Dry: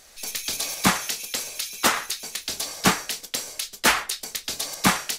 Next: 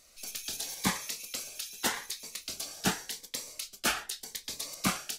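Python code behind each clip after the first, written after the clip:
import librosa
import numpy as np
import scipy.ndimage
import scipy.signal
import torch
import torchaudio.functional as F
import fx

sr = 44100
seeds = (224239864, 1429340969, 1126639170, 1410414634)

y = fx.notch_cascade(x, sr, direction='rising', hz=0.85)
y = F.gain(torch.from_numpy(y), -8.5).numpy()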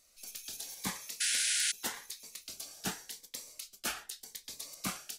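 y = fx.high_shelf(x, sr, hz=6100.0, db=5.5)
y = fx.spec_paint(y, sr, seeds[0], shape='noise', start_s=1.2, length_s=0.52, low_hz=1400.0, high_hz=11000.0, level_db=-22.0)
y = F.gain(torch.from_numpy(y), -9.0).numpy()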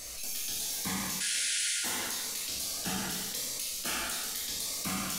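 y = fx.low_shelf(x, sr, hz=120.0, db=5.5)
y = fx.rev_plate(y, sr, seeds[1], rt60_s=0.98, hf_ratio=0.95, predelay_ms=0, drr_db=-5.5)
y = fx.env_flatten(y, sr, amount_pct=70)
y = F.gain(torch.from_numpy(y), -7.5).numpy()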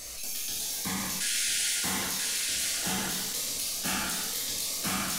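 y = x + 10.0 ** (-3.0 / 20.0) * np.pad(x, (int(986 * sr / 1000.0), 0))[:len(x)]
y = F.gain(torch.from_numpy(y), 1.5).numpy()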